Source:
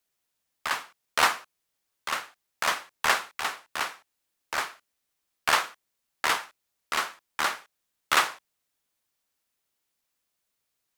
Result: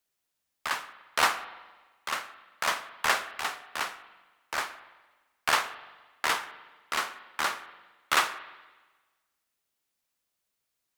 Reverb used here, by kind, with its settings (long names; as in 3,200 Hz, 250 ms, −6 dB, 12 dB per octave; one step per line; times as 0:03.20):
spring reverb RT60 1.3 s, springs 42/57 ms, chirp 35 ms, DRR 13 dB
level −2 dB